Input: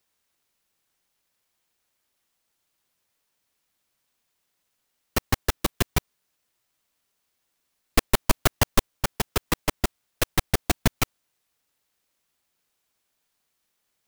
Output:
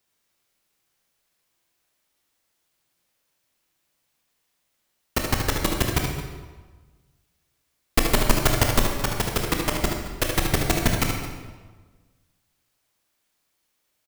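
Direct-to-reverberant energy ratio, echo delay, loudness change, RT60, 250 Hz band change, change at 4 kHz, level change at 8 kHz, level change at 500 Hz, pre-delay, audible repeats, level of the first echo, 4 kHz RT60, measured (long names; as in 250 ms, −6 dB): 0.5 dB, 75 ms, +2.5 dB, 1.4 s, +3.5 dB, +2.5 dB, +2.5 dB, +3.5 dB, 18 ms, 2, −7.0 dB, 1.0 s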